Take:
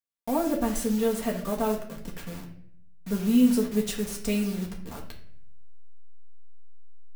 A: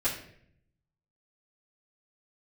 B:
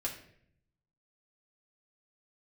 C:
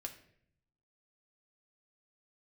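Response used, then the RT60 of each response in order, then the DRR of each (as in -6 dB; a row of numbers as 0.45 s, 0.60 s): B; 0.65 s, 0.65 s, 0.65 s; -10.0 dB, -3.0 dB, 2.5 dB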